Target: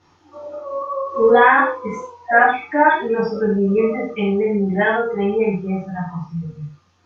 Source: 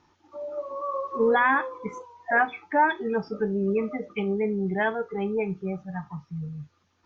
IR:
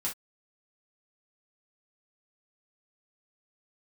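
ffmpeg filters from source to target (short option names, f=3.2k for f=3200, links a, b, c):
-filter_complex "[0:a]asettb=1/sr,asplit=3[a][b][c];[a]atrim=end=0.464[d];[b]atrim=start=0.46:end=1.14,asetpts=PTS-STARTPTS,afade=t=in:d=0.004:c=qsin,afade=t=out:st=0.676:d=0.004:c=qsin,acompressor=threshold=-33dB:ratio=4[e];[c]atrim=start=1.136[f];[d][e]acrossfade=d=0.004:c1=hsin:c2=qsin[g];[g][f]acrossfade=d=0.004:c1=qsin:c2=hsin[h];[1:a]atrim=start_sample=2205,asetrate=24255,aresample=44100[i];[h][i]afir=irnorm=-1:irlink=0,volume=1dB"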